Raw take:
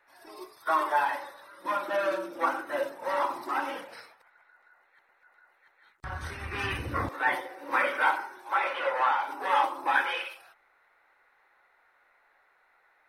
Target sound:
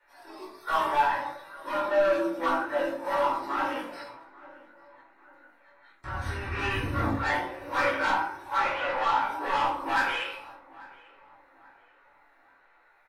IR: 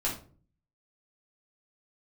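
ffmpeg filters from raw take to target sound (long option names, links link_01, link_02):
-filter_complex "[0:a]acrossover=split=280|6500[link_01][link_02][link_03];[link_02]asoftclip=type=tanh:threshold=-24dB[link_04];[link_03]tremolo=f=1.3:d=0.62[link_05];[link_01][link_04][link_05]amix=inputs=3:normalize=0,flanger=delay=16.5:depth=4.3:speed=0.53,asplit=2[link_06][link_07];[link_07]adelay=842,lowpass=frequency=2000:poles=1,volume=-21dB,asplit=2[link_08][link_09];[link_09]adelay=842,lowpass=frequency=2000:poles=1,volume=0.43,asplit=2[link_10][link_11];[link_11]adelay=842,lowpass=frequency=2000:poles=1,volume=0.43[link_12];[link_06][link_08][link_10][link_12]amix=inputs=4:normalize=0[link_13];[1:a]atrim=start_sample=2205[link_14];[link_13][link_14]afir=irnorm=-1:irlink=0"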